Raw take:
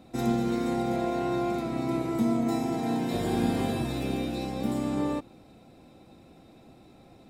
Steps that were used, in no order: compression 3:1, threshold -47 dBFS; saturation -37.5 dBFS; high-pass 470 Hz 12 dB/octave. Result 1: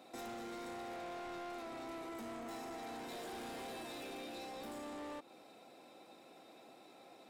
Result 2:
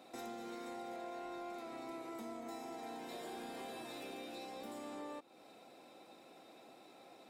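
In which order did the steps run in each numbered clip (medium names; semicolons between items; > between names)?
high-pass > saturation > compression; high-pass > compression > saturation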